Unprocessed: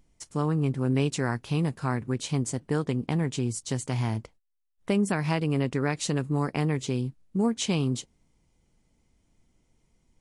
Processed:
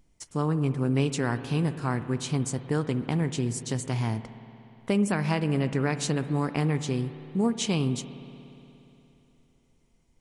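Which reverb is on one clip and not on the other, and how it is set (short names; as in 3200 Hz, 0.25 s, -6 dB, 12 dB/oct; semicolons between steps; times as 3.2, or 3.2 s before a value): spring tank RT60 3.2 s, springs 59 ms, chirp 80 ms, DRR 11.5 dB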